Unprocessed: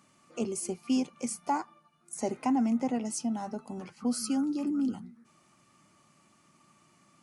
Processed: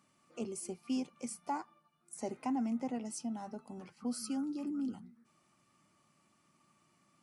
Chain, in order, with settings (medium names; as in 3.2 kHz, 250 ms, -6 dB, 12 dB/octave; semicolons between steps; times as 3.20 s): band-stop 6.6 kHz, Q 17; trim -7.5 dB